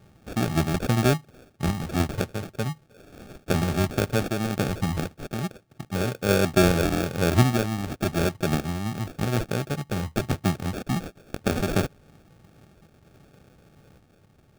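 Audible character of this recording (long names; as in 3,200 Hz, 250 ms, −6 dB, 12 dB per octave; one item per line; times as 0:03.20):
phaser sweep stages 6, 0.98 Hz, lowest notch 530–2,700 Hz
sample-and-hold tremolo
aliases and images of a low sample rate 1,000 Hz, jitter 0%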